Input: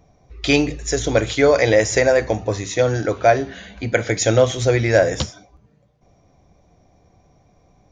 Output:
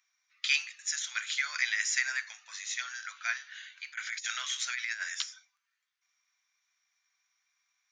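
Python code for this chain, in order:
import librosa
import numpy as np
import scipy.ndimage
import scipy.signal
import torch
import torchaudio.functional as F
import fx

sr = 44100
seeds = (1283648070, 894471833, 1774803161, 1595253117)

y = scipy.signal.sosfilt(scipy.signal.butter(6, 1400.0, 'highpass', fs=sr, output='sos'), x)
y = fx.over_compress(y, sr, threshold_db=-28.0, ratio=-0.5, at=(3.84, 5.12))
y = F.gain(torch.from_numpy(y), -6.5).numpy()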